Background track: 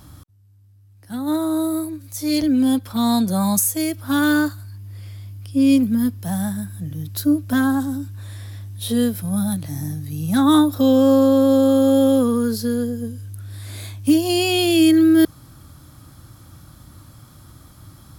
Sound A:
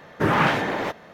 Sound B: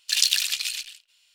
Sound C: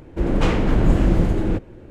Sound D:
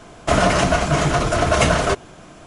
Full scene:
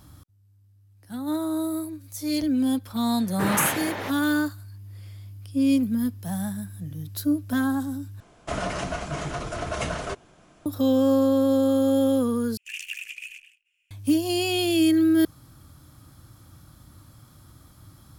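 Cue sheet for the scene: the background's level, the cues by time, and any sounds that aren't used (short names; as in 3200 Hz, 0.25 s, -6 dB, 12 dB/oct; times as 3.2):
background track -6 dB
3.19 add A -7 dB + high shelf 2700 Hz +7.5 dB
8.2 replace with D -13 dB
12.57 replace with B -11 dB + EQ curve 500 Hz 0 dB, 720 Hz -24 dB, 2600 Hz +10 dB, 4000 Hz -26 dB, 6600 Hz -7 dB
not used: C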